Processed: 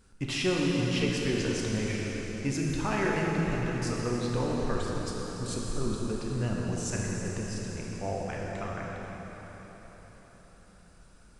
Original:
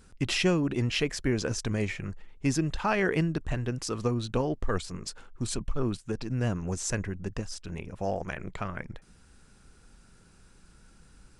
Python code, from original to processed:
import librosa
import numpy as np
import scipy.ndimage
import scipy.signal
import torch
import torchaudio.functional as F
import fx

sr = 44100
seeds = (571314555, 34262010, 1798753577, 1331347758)

y = fx.rev_plate(x, sr, seeds[0], rt60_s=4.9, hf_ratio=0.85, predelay_ms=0, drr_db=-3.5)
y = y * 10.0 ** (-5.5 / 20.0)